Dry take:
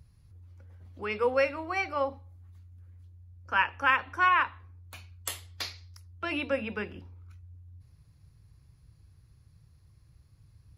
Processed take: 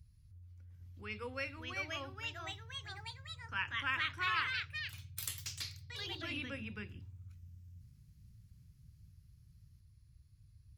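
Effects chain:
delay with pitch and tempo change per echo 748 ms, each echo +3 semitones, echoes 3
guitar amp tone stack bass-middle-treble 6-0-2
level +9 dB

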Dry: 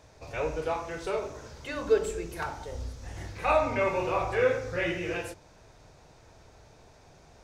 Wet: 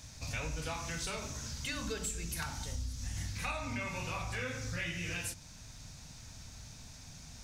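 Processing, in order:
speech leveller within 3 dB 2 s
drawn EQ curve 250 Hz 0 dB, 370 Hz −19 dB, 6,100 Hz +7 dB
downward compressor 6 to 1, threshold −38 dBFS, peak gain reduction 11 dB
level +3.5 dB

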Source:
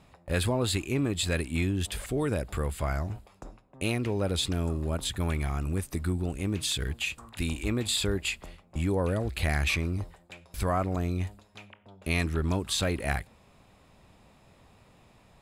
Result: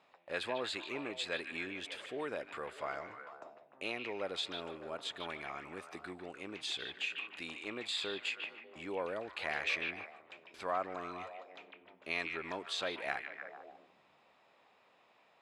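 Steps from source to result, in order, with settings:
band-pass filter 500–4,000 Hz
echo through a band-pass that steps 149 ms, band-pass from 2,500 Hz, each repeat −0.7 octaves, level −4.5 dB
level −5 dB

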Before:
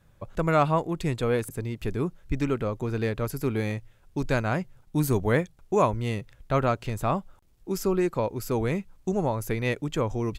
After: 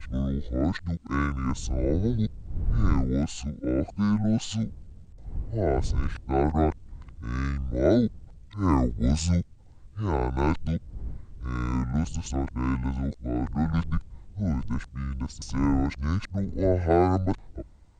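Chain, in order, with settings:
played backwards from end to start
wind on the microphone 110 Hz −35 dBFS
wrong playback speed 78 rpm record played at 45 rpm

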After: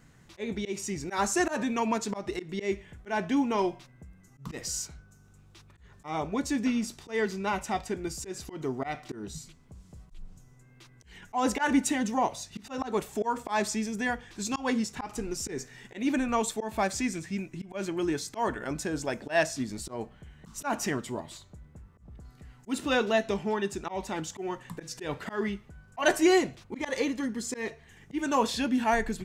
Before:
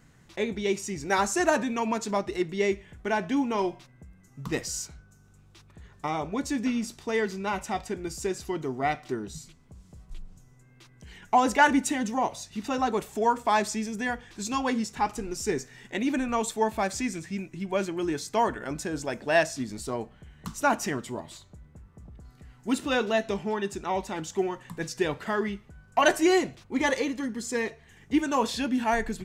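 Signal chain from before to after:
volume swells 141 ms

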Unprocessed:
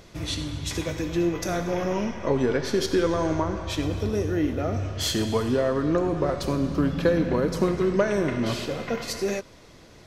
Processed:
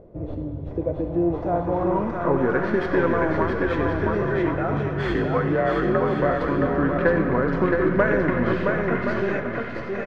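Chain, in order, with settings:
stylus tracing distortion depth 0.16 ms
0:04.21–0:06.21: frequency shifter +48 Hz
bouncing-ball delay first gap 670 ms, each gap 0.6×, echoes 5
low-pass filter sweep 540 Hz → 1,700 Hz, 0:00.73–0:02.87

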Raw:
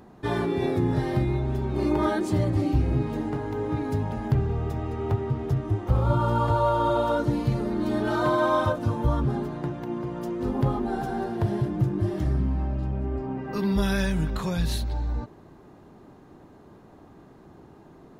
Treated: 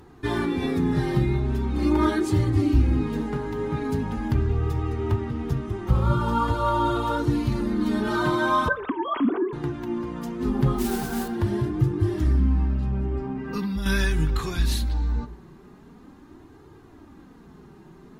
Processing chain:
0:08.68–0:09.53: three sine waves on the formant tracks
parametric band 620 Hz −10.5 dB 0.86 octaves
0:13.18–0:13.86: downward compressor 6 to 1, threshold −29 dBFS, peak gain reduction 9.5 dB
flanger 0.42 Hz, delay 2.2 ms, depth 3.3 ms, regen −22%
0:10.78–0:11.28: noise that follows the level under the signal 12 dB
dense smooth reverb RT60 0.78 s, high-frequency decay 0.5×, DRR 15 dB
level +7.5 dB
MP3 80 kbit/s 48,000 Hz

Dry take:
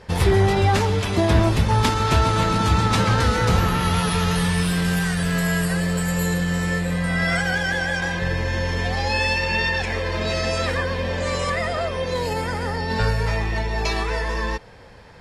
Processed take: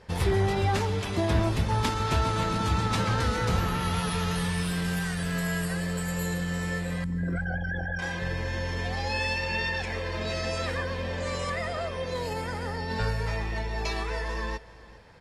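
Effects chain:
0:07.04–0:07.99: spectral envelope exaggerated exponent 3
repeating echo 403 ms, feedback 17%, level −20 dB
level −7.5 dB

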